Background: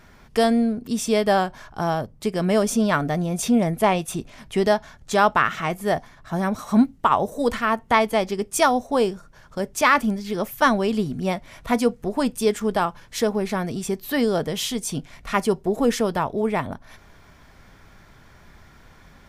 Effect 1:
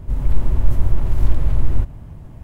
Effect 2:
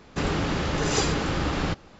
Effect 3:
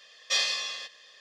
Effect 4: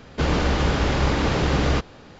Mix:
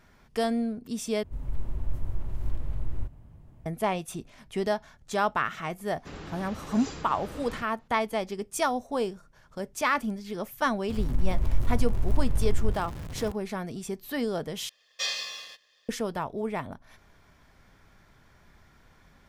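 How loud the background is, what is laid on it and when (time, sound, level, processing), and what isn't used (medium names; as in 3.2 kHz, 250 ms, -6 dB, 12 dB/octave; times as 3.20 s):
background -8.5 dB
1.23 s: replace with 1 -14.5 dB
5.89 s: add 2 -16 dB
10.89 s: add 1 -9.5 dB + jump at every zero crossing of -25.5 dBFS
14.69 s: replace with 3 -3.5 dB + companding laws mixed up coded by A
not used: 4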